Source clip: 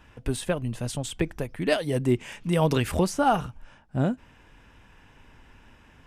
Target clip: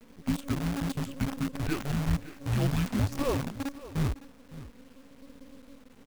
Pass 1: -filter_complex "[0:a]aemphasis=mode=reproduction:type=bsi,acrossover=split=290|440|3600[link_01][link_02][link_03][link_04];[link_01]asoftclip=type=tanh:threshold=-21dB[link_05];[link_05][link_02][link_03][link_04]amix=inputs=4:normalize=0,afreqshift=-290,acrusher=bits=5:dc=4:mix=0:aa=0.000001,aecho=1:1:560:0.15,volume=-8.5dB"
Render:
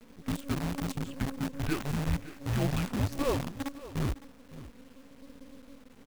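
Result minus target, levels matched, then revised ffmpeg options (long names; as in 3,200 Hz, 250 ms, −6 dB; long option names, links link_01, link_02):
soft clipping: distortion +6 dB
-filter_complex "[0:a]aemphasis=mode=reproduction:type=bsi,acrossover=split=290|440|3600[link_01][link_02][link_03][link_04];[link_01]asoftclip=type=tanh:threshold=-13.5dB[link_05];[link_05][link_02][link_03][link_04]amix=inputs=4:normalize=0,afreqshift=-290,acrusher=bits=5:dc=4:mix=0:aa=0.000001,aecho=1:1:560:0.15,volume=-8.5dB"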